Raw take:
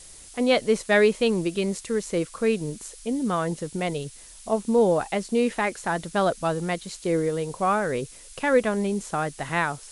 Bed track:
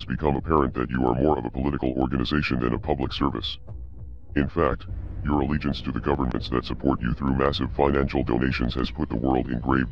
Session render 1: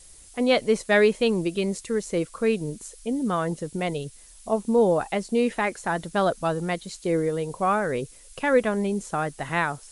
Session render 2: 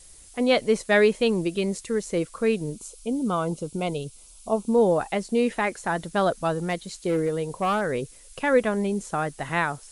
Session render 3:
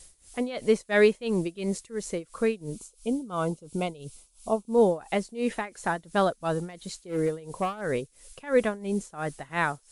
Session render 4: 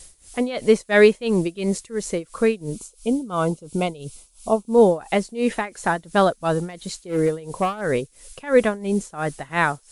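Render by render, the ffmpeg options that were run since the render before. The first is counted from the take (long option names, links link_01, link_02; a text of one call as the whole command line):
ffmpeg -i in.wav -af "afftdn=noise_reduction=6:noise_floor=-46" out.wav
ffmpeg -i in.wav -filter_complex "[0:a]asettb=1/sr,asplit=3[link_01][link_02][link_03];[link_01]atrim=end=2.734[link_04];[link_02]atrim=start=2.73:end=4.73,asetpts=PTS-STARTPTS,afade=type=in:duration=0.004:curve=qsin,afade=type=out:start_time=1.996:duration=0.004:curve=qsin,asuperstop=centerf=1800:order=4:qfactor=2.5[link_05];[link_03]atrim=start=4.726[link_06];[link_04][link_05]acrossfade=duration=0.004:curve1=hsin:curve2=qsin[link_07];[link_07][link_06]acrossfade=duration=0.004:curve1=qsin:curve2=hsin,asettb=1/sr,asplit=3[link_08][link_09][link_10];[link_08]atrim=end=6.664[link_11];[link_09]atrim=start=6.66:end=7.89,asetpts=PTS-STARTPTS,afade=type=in:duration=0.004:curve=qsin,afade=type=out:start_time=1.226:duration=0.004:curve=qsin,volume=19dB,asoftclip=hard,volume=-19dB[link_12];[link_10]atrim=start=7.886[link_13];[link_11][link_12]acrossfade=duration=0.004:curve1=hsin:curve2=qsin[link_14];[link_14][link_13]acrossfade=duration=0.004:curve1=qsin:curve2=hsin" out.wav
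ffmpeg -i in.wav -af "tremolo=f=2.9:d=0.88" out.wav
ffmpeg -i in.wav -af "volume=6.5dB" out.wav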